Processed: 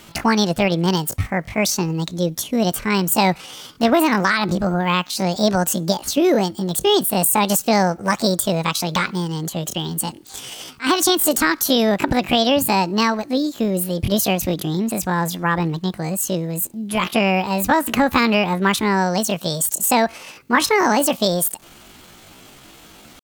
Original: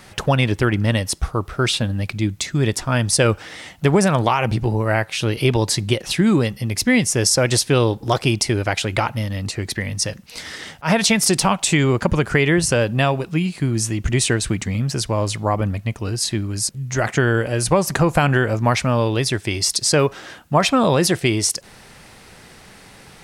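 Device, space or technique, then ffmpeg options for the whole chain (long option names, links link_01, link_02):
chipmunk voice: -af "asetrate=72056,aresample=44100,atempo=0.612027"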